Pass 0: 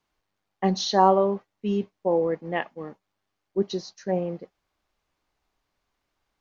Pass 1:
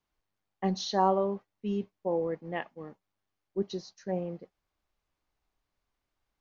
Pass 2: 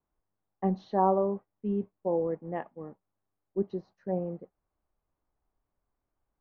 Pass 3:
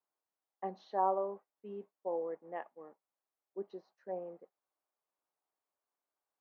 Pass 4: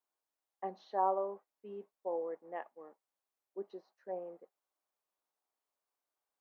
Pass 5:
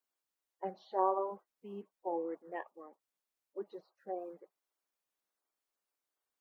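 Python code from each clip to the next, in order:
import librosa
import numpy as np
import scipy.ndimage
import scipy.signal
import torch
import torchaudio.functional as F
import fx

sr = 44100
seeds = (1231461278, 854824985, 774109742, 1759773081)

y1 = fx.low_shelf(x, sr, hz=130.0, db=6.0)
y1 = y1 * 10.0 ** (-7.5 / 20.0)
y2 = scipy.signal.sosfilt(scipy.signal.butter(2, 1100.0, 'lowpass', fs=sr, output='sos'), y1)
y2 = y2 * 10.0 ** (1.5 / 20.0)
y3 = scipy.signal.sosfilt(scipy.signal.butter(2, 510.0, 'highpass', fs=sr, output='sos'), y2)
y3 = y3 * 10.0 ** (-4.5 / 20.0)
y4 = fx.peak_eq(y3, sr, hz=120.0, db=-10.0, octaves=1.2)
y5 = fx.spec_quant(y4, sr, step_db=30)
y5 = y5 * 10.0 ** (1.0 / 20.0)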